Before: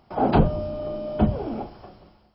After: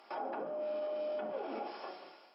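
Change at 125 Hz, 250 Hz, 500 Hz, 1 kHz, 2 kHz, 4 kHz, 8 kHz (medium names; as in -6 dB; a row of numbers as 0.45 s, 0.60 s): under -40 dB, -23.0 dB, -9.5 dB, -13.5 dB, -10.0 dB, -10.0 dB, no reading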